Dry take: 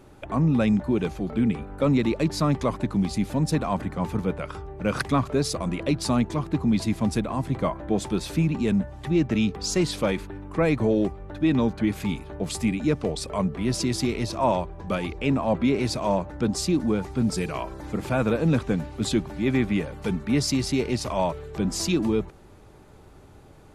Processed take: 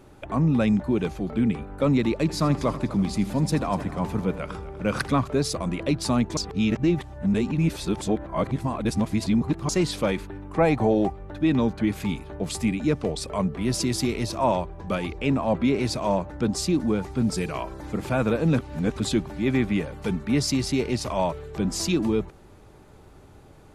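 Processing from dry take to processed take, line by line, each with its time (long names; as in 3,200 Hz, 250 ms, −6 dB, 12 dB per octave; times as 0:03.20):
0:02.20–0:05.14: echo machine with several playback heads 82 ms, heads first and third, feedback 46%, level −17 dB
0:06.37–0:09.69: reverse
0:10.56–0:11.10: parametric band 770 Hz +13.5 dB 0.35 octaves
0:13.61–0:14.43: high-shelf EQ 11,000 Hz +8 dB
0:18.59–0:19.00: reverse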